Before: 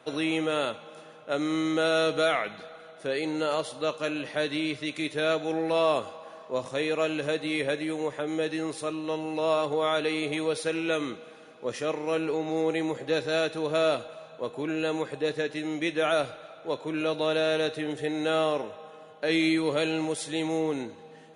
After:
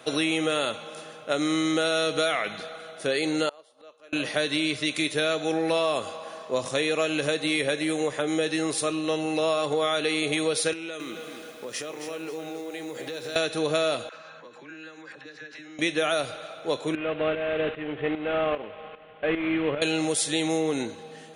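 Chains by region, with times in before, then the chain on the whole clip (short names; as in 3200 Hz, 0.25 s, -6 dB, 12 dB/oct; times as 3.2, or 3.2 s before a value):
3.49–4.13 HPF 360 Hz + high shelf 2900 Hz -11.5 dB + flipped gate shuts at -35 dBFS, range -25 dB
10.73–13.36 compressor 12:1, threshold -37 dBFS + HPF 150 Hz + lo-fi delay 0.268 s, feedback 35%, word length 10-bit, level -7.5 dB
14.09–15.79 compressor 16:1, threshold -42 dBFS + speaker cabinet 210–6000 Hz, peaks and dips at 250 Hz -4 dB, 420 Hz -10 dB, 680 Hz -10 dB, 1600 Hz +8 dB, 3400 Hz -7 dB + dispersion lows, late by 54 ms, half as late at 650 Hz
16.95–19.82 CVSD 16 kbps + tremolo saw up 2.5 Hz, depth 70%
whole clip: high shelf 3300 Hz +9 dB; notch 930 Hz, Q 15; compressor, threshold -26 dBFS; gain +5 dB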